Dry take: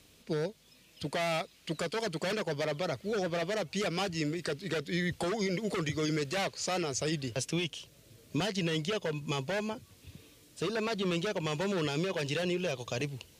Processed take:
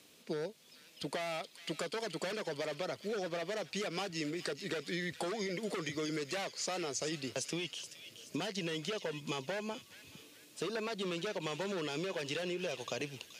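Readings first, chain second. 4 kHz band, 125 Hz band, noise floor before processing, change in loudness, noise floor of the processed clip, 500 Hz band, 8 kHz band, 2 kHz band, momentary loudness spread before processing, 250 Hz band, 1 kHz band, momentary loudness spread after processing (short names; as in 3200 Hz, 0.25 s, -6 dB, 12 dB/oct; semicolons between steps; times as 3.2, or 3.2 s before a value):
-3.5 dB, -10.0 dB, -61 dBFS, -5.0 dB, -60 dBFS, -5.0 dB, -2.5 dB, -4.5 dB, 6 LU, -6.0 dB, -5.0 dB, 7 LU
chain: HPF 210 Hz 12 dB/oct; compressor, threshold -34 dBFS, peak gain reduction 7 dB; on a send: thin delay 0.426 s, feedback 45%, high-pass 2200 Hz, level -9 dB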